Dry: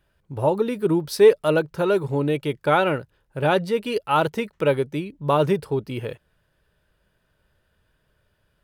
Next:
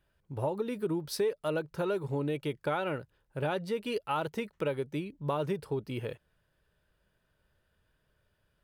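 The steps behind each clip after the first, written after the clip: compressor 4:1, threshold -22 dBFS, peak gain reduction 11.5 dB; gain -6.5 dB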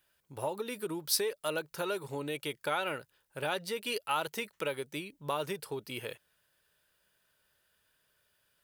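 tilt +3.5 dB/oct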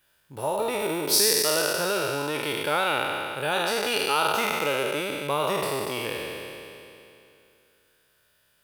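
spectral trails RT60 2.74 s; gain +4 dB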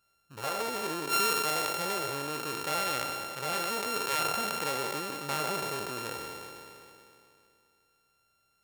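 sample sorter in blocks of 32 samples; gain -6.5 dB

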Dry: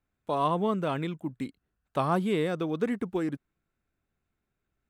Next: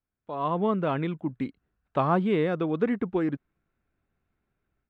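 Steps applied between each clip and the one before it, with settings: LPF 2700 Hz 12 dB/oct; AGC gain up to 12.5 dB; gain -8.5 dB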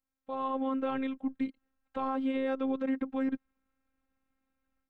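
limiter -21.5 dBFS, peak gain reduction 9.5 dB; robotiser 265 Hz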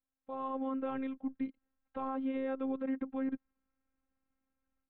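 air absorption 350 m; gain -3.5 dB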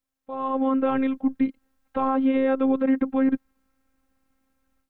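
AGC gain up to 7.5 dB; gain +6.5 dB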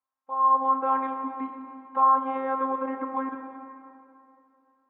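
band-pass 1000 Hz, Q 4.6; reverb RT60 2.6 s, pre-delay 5 ms, DRR 4.5 dB; gain +8.5 dB

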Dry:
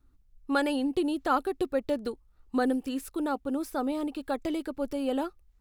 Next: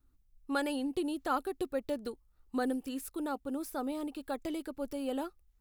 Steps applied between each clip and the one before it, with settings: high shelf 8000 Hz +8.5 dB; gain -6 dB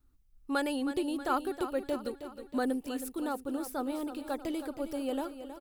feedback echo 0.318 s, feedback 54%, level -11 dB; gain +1.5 dB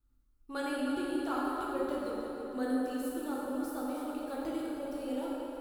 plate-style reverb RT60 3.3 s, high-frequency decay 0.55×, DRR -5.5 dB; gain -9 dB

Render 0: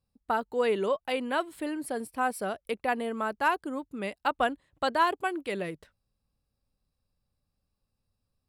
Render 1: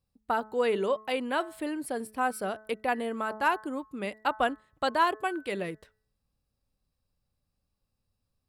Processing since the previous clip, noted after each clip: de-hum 216.2 Hz, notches 9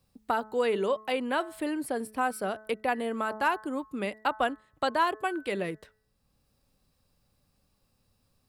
three-band squash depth 40%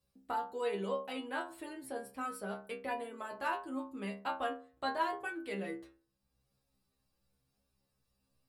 metallic resonator 65 Hz, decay 0.48 s, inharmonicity 0.002; gain +1 dB

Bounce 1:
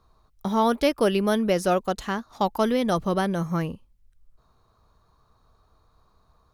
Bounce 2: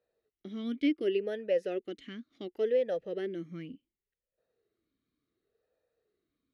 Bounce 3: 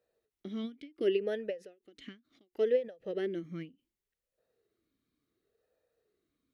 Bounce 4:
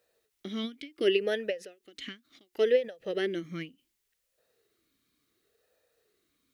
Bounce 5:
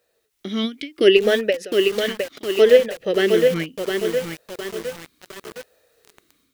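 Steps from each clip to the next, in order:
vowel sweep e-i 0.69 Hz
ending taper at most 220 dB/s; gain +1.5 dB
tilt shelf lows -5.5 dB, about 1100 Hz; gain +7.5 dB
AGC gain up to 7.5 dB; lo-fi delay 0.711 s, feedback 55%, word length 6-bit, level -4 dB; gain +4.5 dB

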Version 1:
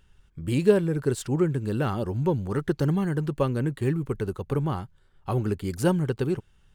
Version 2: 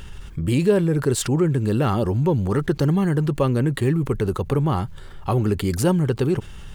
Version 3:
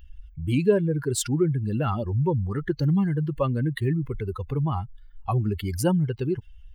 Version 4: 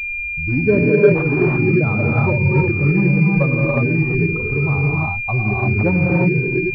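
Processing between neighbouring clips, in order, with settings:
notch 1500 Hz, Q 20; fast leveller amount 50%
per-bin expansion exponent 2
non-linear reverb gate 0.38 s rising, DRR -4 dB; pulse-width modulation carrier 2400 Hz; gain +3 dB

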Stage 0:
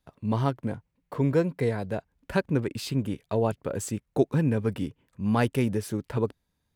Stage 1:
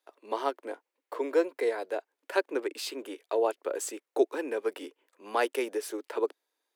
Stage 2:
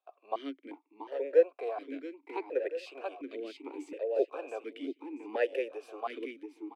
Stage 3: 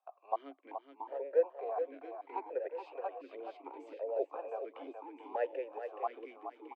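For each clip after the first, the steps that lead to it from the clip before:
steep high-pass 330 Hz 48 dB/oct
on a send: feedback echo 0.681 s, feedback 35%, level -6.5 dB; on the sum: vowel sequencer 2.8 Hz; gain +6.5 dB
band-pass 830 Hz, Q 2.2; on a send: echo 0.424 s -8.5 dB; on the sum: mismatched tape noise reduction encoder only; gain +2.5 dB

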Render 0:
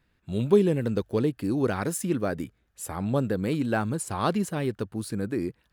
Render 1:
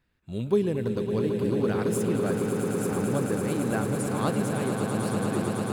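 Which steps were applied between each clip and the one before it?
swelling echo 0.111 s, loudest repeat 8, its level -8.5 dB; gain -4 dB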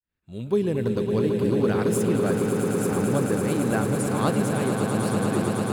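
opening faded in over 0.80 s; gain +3.5 dB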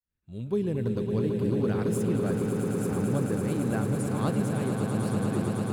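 low shelf 220 Hz +9 dB; gain -8 dB

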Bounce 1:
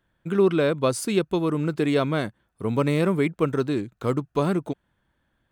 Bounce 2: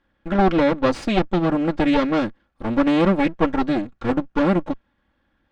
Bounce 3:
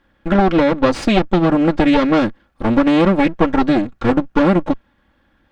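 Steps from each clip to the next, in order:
minimum comb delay 3.6 ms; air absorption 150 m; gain +6 dB
compressor, threshold -18 dBFS, peak gain reduction 7 dB; gain +8.5 dB

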